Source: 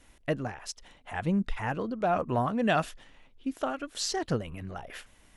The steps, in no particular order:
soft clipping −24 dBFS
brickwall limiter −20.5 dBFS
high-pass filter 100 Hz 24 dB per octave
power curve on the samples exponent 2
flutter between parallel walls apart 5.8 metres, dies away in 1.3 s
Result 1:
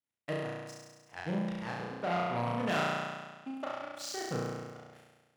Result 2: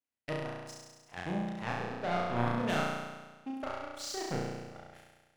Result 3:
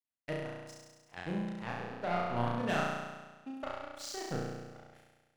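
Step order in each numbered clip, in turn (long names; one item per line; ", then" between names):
power curve on the samples, then flutter between parallel walls, then soft clipping, then high-pass filter, then brickwall limiter
soft clipping, then high-pass filter, then power curve on the samples, then brickwall limiter, then flutter between parallel walls
high-pass filter, then power curve on the samples, then soft clipping, then brickwall limiter, then flutter between parallel walls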